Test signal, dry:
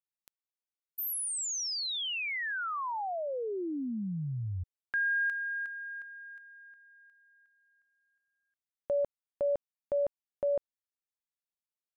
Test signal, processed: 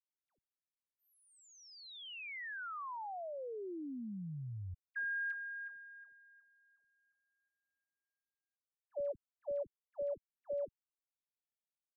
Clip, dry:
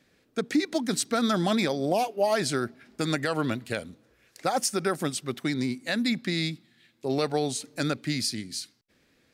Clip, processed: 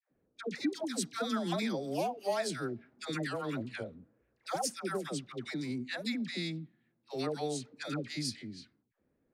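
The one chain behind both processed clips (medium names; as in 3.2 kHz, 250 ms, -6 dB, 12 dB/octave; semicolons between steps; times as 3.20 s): level-controlled noise filter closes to 820 Hz, open at -23.5 dBFS; phase dispersion lows, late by 109 ms, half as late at 790 Hz; trim -8.5 dB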